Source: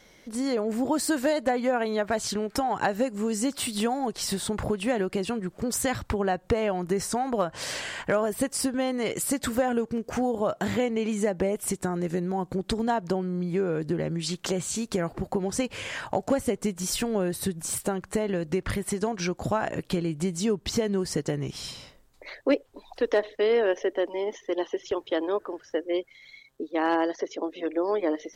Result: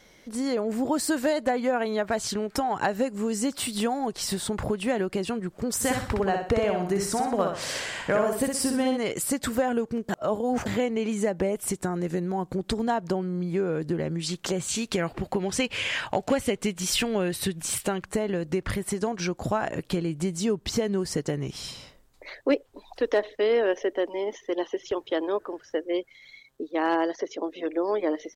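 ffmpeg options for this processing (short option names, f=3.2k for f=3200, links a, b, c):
-filter_complex "[0:a]asplit=3[a][b][c];[a]afade=t=out:st=5.8:d=0.02[d];[b]aecho=1:1:62|124|186|248|310:0.596|0.232|0.0906|0.0353|0.0138,afade=t=in:st=5.8:d=0.02,afade=t=out:st=8.96:d=0.02[e];[c]afade=t=in:st=8.96:d=0.02[f];[d][e][f]amix=inputs=3:normalize=0,asettb=1/sr,asplit=3[g][h][i];[g]atrim=end=14.684[j];[h]atrim=start=14.68:end=18.06,asetpts=PTS-STARTPTS,afade=t=in:d=0.004:c=qsin,afade=t=out:st=3.376:d=0.004:c=qsin,equalizer=f=2.8k:t=o:w=1.4:g=9[k];[i]atrim=start=18.056[l];[j][k]acrossfade=d=0.004:c1=hsin:c2=qsin[m];[m][l]acrossfade=d=0.004:c1=qsin:c2=hsin,asplit=3[n][o][p];[n]atrim=end=10.092[q];[o]atrim=start=10.088:end=10.662,asetpts=PTS-STARTPTS,areverse[r];[p]atrim=start=10.658[s];[q][r]acrossfade=d=0.004:c1=hsin:c2=hsin[t];[t][s]acrossfade=d=0.004:c1=hsin:c2=hsin"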